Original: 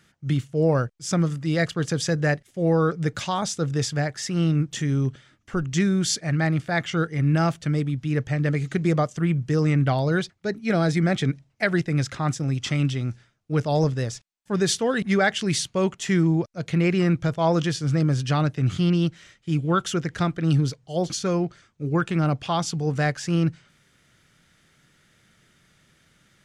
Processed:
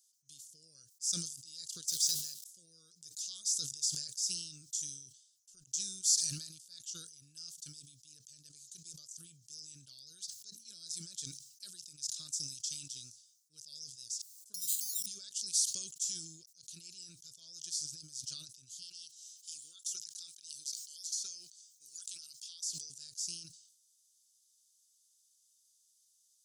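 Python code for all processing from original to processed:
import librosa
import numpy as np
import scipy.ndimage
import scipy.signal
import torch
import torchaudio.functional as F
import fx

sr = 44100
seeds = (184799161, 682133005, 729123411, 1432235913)

y = fx.chain(x, sr, fx.zero_step(step_db=-34.5),
    fx.peak_eq(hz=3500.0, db=6.0, octaves=0.65),
    fx.hum_notches(base_hz=60, count=9), at=(1.88, 2.44))
y = fx.chain(y, sr, fx.comb(ms=1.0, depth=0.85),
    fx.resample_bad(factor=8, down='none', up='hold'), at=(14.54, 15.06))
y = fx.chain(y, sr, fx.highpass(hz=1400.0, slope=6),
    fx.band_squash(depth_pct=100), at=(18.82, 22.9))
y = scipy.signal.sosfilt(scipy.signal.cheby2(4, 50, 2200.0, 'highpass', fs=sr, output='sos'), y)
y = fx.sustainer(y, sr, db_per_s=65.0)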